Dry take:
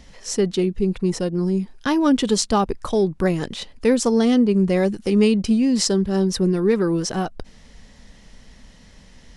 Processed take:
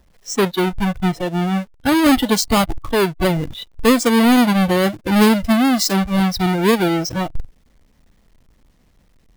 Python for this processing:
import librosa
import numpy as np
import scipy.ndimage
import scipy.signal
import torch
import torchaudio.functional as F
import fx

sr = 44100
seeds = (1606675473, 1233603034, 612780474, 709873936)

y = fx.halfwave_hold(x, sr)
y = fx.noise_reduce_blind(y, sr, reduce_db=14)